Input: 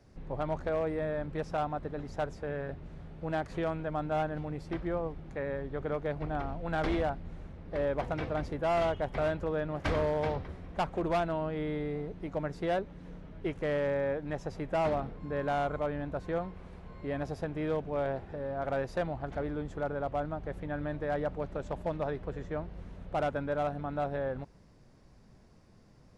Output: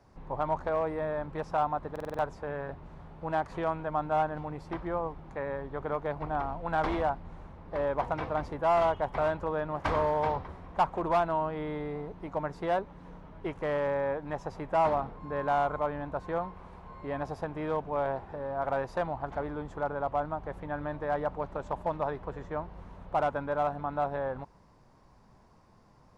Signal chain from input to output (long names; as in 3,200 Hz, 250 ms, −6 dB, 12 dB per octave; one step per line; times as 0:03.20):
parametric band 970 Hz +12.5 dB 0.9 octaves
buffer that repeats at 0:01.91, samples 2,048, times 5
level −2.5 dB